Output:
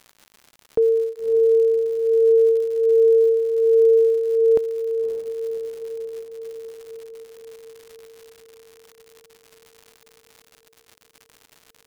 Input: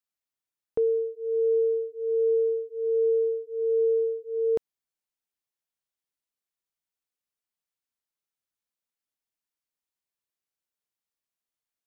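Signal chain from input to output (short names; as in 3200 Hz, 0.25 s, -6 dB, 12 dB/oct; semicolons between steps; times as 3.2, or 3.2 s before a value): diffused feedback echo 0.575 s, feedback 66%, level -10 dB; crackle 160/s -41 dBFS; gain +6.5 dB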